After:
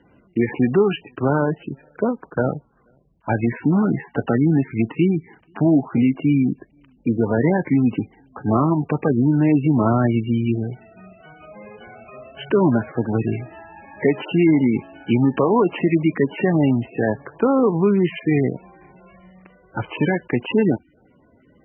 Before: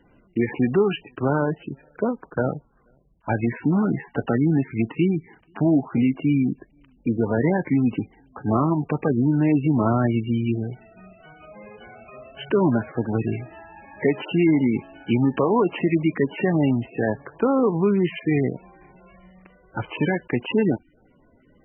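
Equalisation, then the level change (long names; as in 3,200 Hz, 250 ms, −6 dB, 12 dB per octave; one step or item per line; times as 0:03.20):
high-pass filter 59 Hz
high-frequency loss of the air 97 metres
+3.0 dB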